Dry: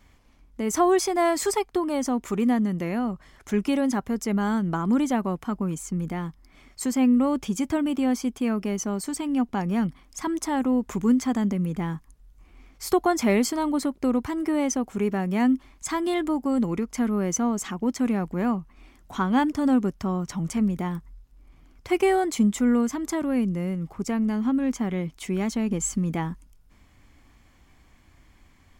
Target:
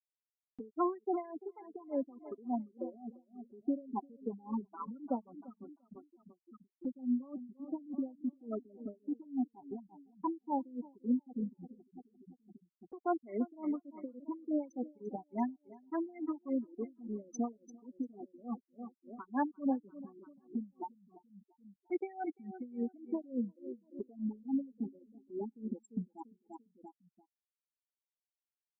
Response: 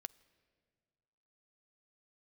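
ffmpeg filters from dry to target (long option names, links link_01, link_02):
-filter_complex "[0:a]asplit=2[link_01][link_02];[link_02]asoftclip=type=tanh:threshold=-19dB,volume=-12dB[link_03];[link_01][link_03]amix=inputs=2:normalize=0,acrossover=split=220 5700:gain=0.0794 1 0.251[link_04][link_05][link_06];[link_04][link_05][link_06]amix=inputs=3:normalize=0,acrusher=bits=4:mix=0:aa=0.000001,highpass=frequency=59:poles=1,afftfilt=real='re*gte(hypot(re,im),0.224)':imag='im*gte(hypot(re,im),0.224)':win_size=1024:overlap=0.75,asplit=2[link_07][link_08];[link_08]adelay=344,lowpass=frequency=3400:poles=1,volume=-19dB,asplit=2[link_09][link_10];[link_10]adelay=344,lowpass=frequency=3400:poles=1,volume=0.4,asplit=2[link_11][link_12];[link_12]adelay=344,lowpass=frequency=3400:poles=1,volume=0.4[link_13];[link_07][link_09][link_11][link_13]amix=inputs=4:normalize=0,acompressor=mode=upward:threshold=-38dB:ratio=2.5,flanger=delay=2.8:depth=1.3:regen=-34:speed=0.83:shape=triangular,acompressor=threshold=-43dB:ratio=1.5,aeval=exprs='val(0)*pow(10,-23*(0.5-0.5*cos(2*PI*3.5*n/s))/20)':channel_layout=same,volume=3dB"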